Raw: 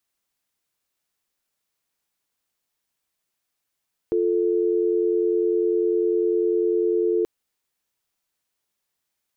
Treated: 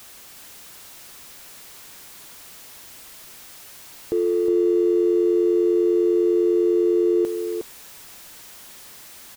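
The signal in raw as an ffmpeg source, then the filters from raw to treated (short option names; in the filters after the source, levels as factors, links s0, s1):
-f lavfi -i "aevalsrc='0.0891*(sin(2*PI*350*t)+sin(2*PI*440*t))':d=3.13:s=44100"
-filter_complex "[0:a]aeval=exprs='val(0)+0.5*0.0126*sgn(val(0))':c=same,asplit=2[s0][s1];[s1]aecho=0:1:363:0.501[s2];[s0][s2]amix=inputs=2:normalize=0"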